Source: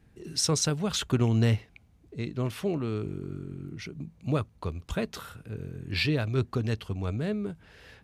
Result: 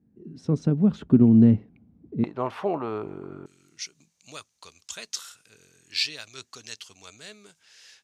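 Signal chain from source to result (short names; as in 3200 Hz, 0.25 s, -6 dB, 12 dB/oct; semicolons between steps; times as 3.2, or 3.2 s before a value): AGC gain up to 12.5 dB; band-pass 230 Hz, Q 2.5, from 2.24 s 860 Hz, from 3.46 s 6400 Hz; gain +3 dB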